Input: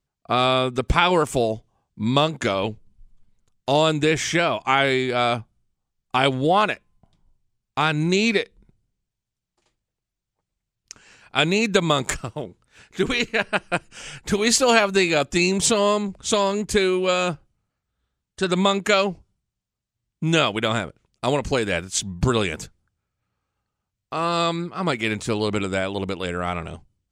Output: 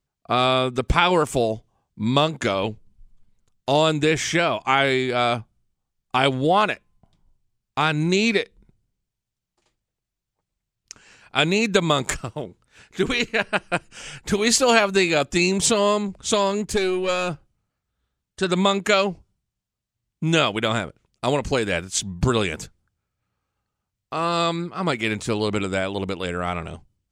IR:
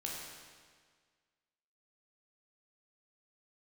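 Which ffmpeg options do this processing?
-filter_complex "[0:a]asettb=1/sr,asplit=3[link_01][link_02][link_03];[link_01]atrim=end=16.654[link_04];[link_02]atrim=start=16.65:end=17.31,asetpts=PTS-STARTPTS,afade=type=in:duration=0.004:curve=qsin,afade=type=out:start_time=0.656:duration=0.004:curve=qsin,aeval=exprs='(tanh(3.98*val(0)+0.4)-tanh(0.4))/3.98':channel_layout=same[link_05];[link_03]atrim=start=17.306[link_06];[link_04][link_05]acrossfade=duration=0.004:curve1=hsin:curve2=qsin[link_07];[link_07][link_06]acrossfade=duration=0.004:curve1=qsin:curve2=hsin"

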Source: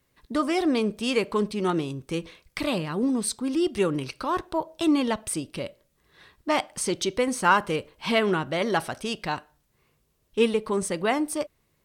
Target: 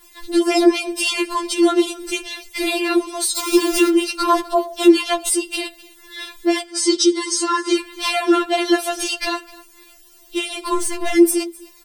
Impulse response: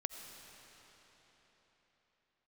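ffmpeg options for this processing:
-filter_complex "[0:a]asettb=1/sr,asplit=3[link_01][link_02][link_03];[link_01]atrim=end=3.364[link_04];[link_02]atrim=start=3.36:end=3.89,asetpts=PTS-STARTPTS,afade=type=in:duration=0.004:curve=qsin,afade=type=out:start_time=0.526:duration=0.004:curve=qsin,aeval=exprs='val(0)+0.5*0.0376*sgn(val(0))':channel_layout=same[link_05];[link_03]atrim=start=3.886[link_06];[link_04][link_05]acrossfade=duration=0.004:curve1=hsin:curve2=qsin[link_07];[link_07][link_06]acrossfade=duration=0.004:curve1=qsin:curve2=hsin,highshelf=frequency=2500:gain=10.5,asplit=2[link_08][link_09];[link_09]acompressor=threshold=-33dB:ratio=6,volume=1dB[link_10];[link_08][link_10]amix=inputs=2:normalize=0,alimiter=limit=-17dB:level=0:latency=1:release=248,aeval=exprs='val(0)*sin(2*PI*37*n/s)':channel_layout=same,asettb=1/sr,asplit=3[link_11][link_12][link_13];[link_11]atrim=end=10.744[link_14];[link_12]atrim=start=10.74:end=11.15,asetpts=PTS-STARTPTS,afade=type=in:duration=0.004:curve=qsin,afade=type=out:start_time=0.406:duration=0.004:curve=qsin,aeval=exprs='(tanh(35.5*val(0)+0.5)-tanh(0.5))/35.5':channel_layout=same[link_15];[link_13]atrim=start=11.146[link_16];[link_14][link_15]acrossfade=duration=0.004:curve1=hsin:curve2=qsin[link_17];[link_17][link_16]acrossfade=duration=0.004:curve1=qsin:curve2=hsin,aeval=exprs='1.19*sin(PI/2*7.08*val(0)/1.19)':channel_layout=same,asettb=1/sr,asplit=3[link_18][link_19][link_20];[link_18]atrim=end=6.654[link_21];[link_19]atrim=start=6.65:end=7.76,asetpts=PTS-STARTPTS,afade=type=in:duration=0.004:curve=qsin,afade=type=out:start_time=1.106:duration=0.004:curve=qsin,highpass=290,equalizer=frequency=330:width_type=q:width=4:gain=7,equalizer=frequency=700:width_type=q:width=4:gain=-8,equalizer=frequency=2600:width_type=q:width=4:gain=-9,equalizer=frequency=4900:width_type=q:width=4:gain=6,lowpass=frequency=8600:width=0.5412,lowpass=frequency=8600:width=1.3066[link_22];[link_20]atrim=start=7.756[link_23];[link_21][link_22]acrossfade=duration=0.004:curve1=hsin:curve2=qsin[link_24];[link_24][link_23]acrossfade=duration=0.004:curve1=qsin:curve2=hsin,asplit=2[link_25][link_26];[link_26]aecho=0:1:256:0.0891[link_27];[link_25][link_27]amix=inputs=2:normalize=0,afftfilt=real='re*4*eq(mod(b,16),0)':imag='im*4*eq(mod(b,16),0)':win_size=2048:overlap=0.75,volume=-6dB"

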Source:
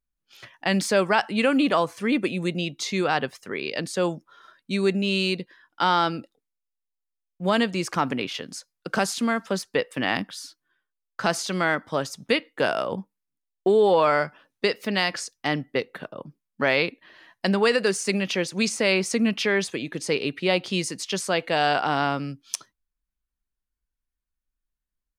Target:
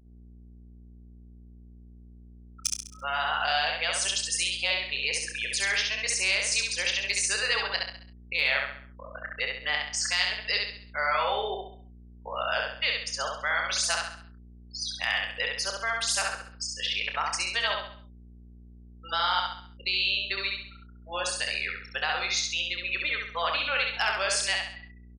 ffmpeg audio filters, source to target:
ffmpeg -i in.wav -filter_complex "[0:a]areverse,highpass=frequency=550:width=0.5412,highpass=frequency=550:width=1.3066,afftfilt=real='re*gte(hypot(re,im),0.0282)':imag='im*gte(hypot(re,im),0.0282)':win_size=1024:overlap=0.75,tiltshelf=frequency=1200:gain=-8.5,acompressor=threshold=-30dB:ratio=2,aeval=exprs='val(0)+0.00224*(sin(2*PI*60*n/s)+sin(2*PI*2*60*n/s)/2+sin(2*PI*3*60*n/s)/3+sin(2*PI*4*60*n/s)/4+sin(2*PI*5*60*n/s)/5)':channel_layout=same,anlmdn=0.00398,aeval=exprs='0.211*(cos(1*acos(clip(val(0)/0.211,-1,1)))-cos(1*PI/2))+0.00237*(cos(2*acos(clip(val(0)/0.211,-1,1)))-cos(2*PI/2))':channel_layout=same,asplit=2[link_01][link_02];[link_02]adelay=29,volume=-9.5dB[link_03];[link_01][link_03]amix=inputs=2:normalize=0,aecho=1:1:67|134|201|268|335:0.708|0.297|0.125|0.0525|0.022" out.wav

